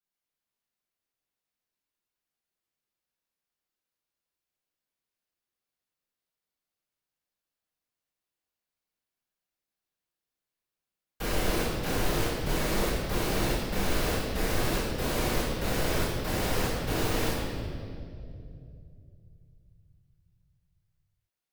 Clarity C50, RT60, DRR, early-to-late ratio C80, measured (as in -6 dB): 0.5 dB, 2.5 s, -11.5 dB, 1.5 dB